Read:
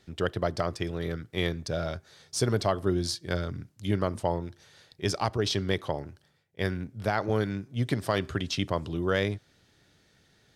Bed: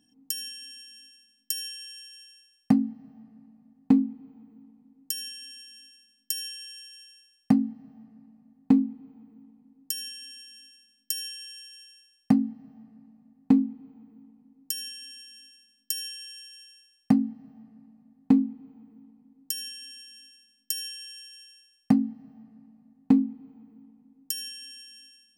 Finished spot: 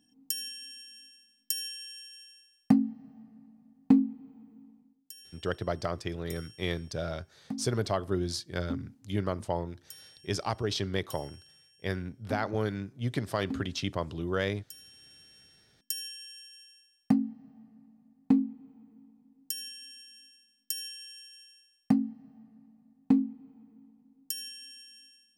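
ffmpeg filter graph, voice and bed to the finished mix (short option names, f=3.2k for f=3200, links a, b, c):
-filter_complex "[0:a]adelay=5250,volume=-3.5dB[a];[1:a]volume=11dB,afade=t=out:st=4.74:d=0.27:silence=0.177828,afade=t=in:st=14.85:d=1.03:silence=0.237137[b];[a][b]amix=inputs=2:normalize=0"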